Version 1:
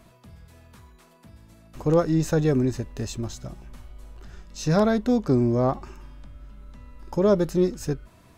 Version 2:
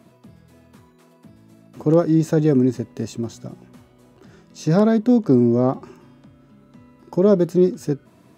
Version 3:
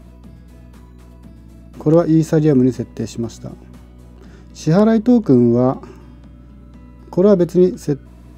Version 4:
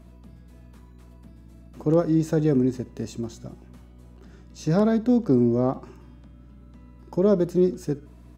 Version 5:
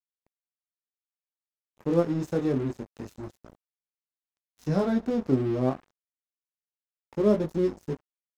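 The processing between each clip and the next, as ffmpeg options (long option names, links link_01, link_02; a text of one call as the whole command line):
ffmpeg -i in.wav -af "highpass=frequency=97:width=0.5412,highpass=frequency=97:width=1.3066,equalizer=frequency=280:width_type=o:width=2.1:gain=9,volume=-2dB" out.wav
ffmpeg -i in.wav -af "aeval=exprs='val(0)+0.00708*(sin(2*PI*60*n/s)+sin(2*PI*2*60*n/s)/2+sin(2*PI*3*60*n/s)/3+sin(2*PI*4*60*n/s)/4+sin(2*PI*5*60*n/s)/5)':channel_layout=same,volume=3.5dB" out.wav
ffmpeg -i in.wav -af "aecho=1:1:66|132|198:0.1|0.037|0.0137,volume=-8dB" out.wav
ffmpeg -i in.wav -af "flanger=delay=18.5:depth=4.8:speed=0.26,aeval=exprs='sgn(val(0))*max(abs(val(0))-0.0106,0)':channel_layout=same" out.wav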